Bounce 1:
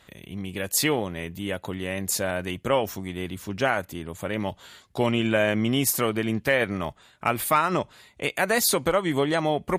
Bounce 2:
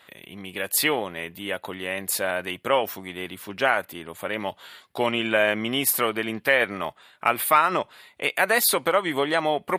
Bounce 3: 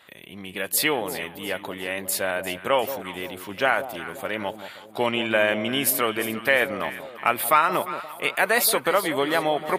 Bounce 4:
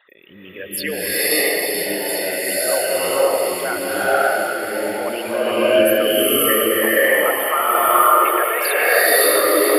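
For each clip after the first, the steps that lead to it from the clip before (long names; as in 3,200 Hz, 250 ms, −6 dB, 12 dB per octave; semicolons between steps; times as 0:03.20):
high-pass filter 710 Hz 6 dB per octave; parametric band 6,500 Hz −11.5 dB 0.77 octaves; level +5 dB
delay that swaps between a low-pass and a high-pass 175 ms, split 880 Hz, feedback 65%, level −10 dB
spectral envelope exaggerated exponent 3; delay with a high-pass on its return 430 ms, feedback 78%, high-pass 2,500 Hz, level −5.5 dB; slow-attack reverb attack 600 ms, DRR −11 dB; level −3.5 dB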